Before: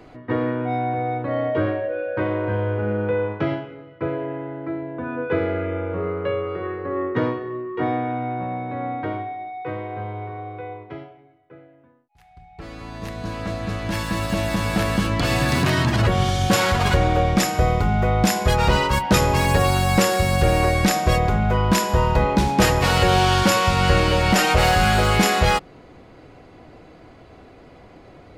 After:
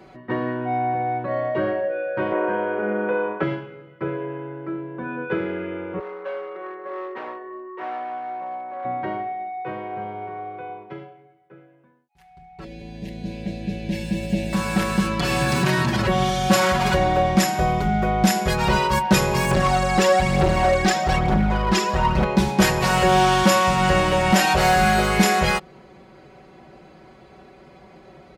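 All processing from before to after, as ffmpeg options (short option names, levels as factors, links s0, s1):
-filter_complex "[0:a]asettb=1/sr,asplit=3[s0][s1][s2];[s0]atrim=end=2.324[s3];[s1]atrim=start=2.32:end=3.43,asetpts=PTS-STARTPTS,afade=t=in:d=0.004:c=qsin,afade=t=out:st=1.106:d=0.004:c=qsin,acrossover=split=240 2700:gain=0.0794 1 0.158[s4][s5][s6];[s4][s5][s6]amix=inputs=3:normalize=0,acontrast=27[s7];[s2]atrim=start=3.426[s8];[s3][s7]acrossfade=d=0.004:c1=hsin:c2=qsin[s9];[s9][s8]acrossfade=d=0.004:c1=qsin:c2=hsin,asettb=1/sr,asplit=3[s10][s11][s12];[s10]atrim=end=5.994[s13];[s11]atrim=start=5.99:end=8.85,asetpts=PTS-STARTPTS,afade=t=in:d=0.004:c=qsin,afade=t=out:st=2.856:d=0.004:c=qsin,highshelf=f=2000:g=-11.5,asoftclip=type=hard:threshold=0.0708,highpass=610,lowpass=3000[s14];[s12]atrim=start=8.846[s15];[s13][s14]acrossfade=d=0.004:c1=hsin:c2=qsin[s16];[s16][s15]acrossfade=d=0.004:c1=qsin:c2=hsin,asettb=1/sr,asplit=3[s17][s18][s19];[s17]atrim=end=12.644[s20];[s18]atrim=start=12.64:end=14.53,asetpts=PTS-STARTPTS,afade=t=in:d=0.004:c=qsin,afade=t=out:st=1.886:d=0.004:c=qsin,asuperstop=centerf=1200:order=4:qfactor=0.8,acompressor=mode=upward:threshold=0.0251:ratio=2.5:attack=3.2:release=140:knee=2.83:detection=peak,bass=f=250:g=2,treble=f=4000:g=-9[s21];[s19]atrim=start=14.526[s22];[s20][s21]acrossfade=d=0.004:c1=hsin:c2=qsin[s23];[s23][s22]acrossfade=d=0.004:c1=qsin:c2=hsin,asettb=1/sr,asplit=3[s24][s25][s26];[s24]atrim=end=19.514[s27];[s25]atrim=start=19.51:end=22.24,asetpts=PTS-STARTPTS,afade=t=in:d=0.004:c=qsin,afade=t=out:st=2.726:d=0.004:c=qsin,lowpass=6200,aphaser=in_gain=1:out_gain=1:delay=2.6:decay=0.57:speed=1.1:type=triangular,volume=3.98,asoftclip=hard,volume=0.251[s28];[s26]atrim=start=22.236[s29];[s27][s28]acrossfade=d=0.004:c1=hsin:c2=qsin[s30];[s30][s29]acrossfade=d=0.004:c1=qsin:c2=hsin,highpass=52,aecho=1:1:5.3:0.79,volume=0.75"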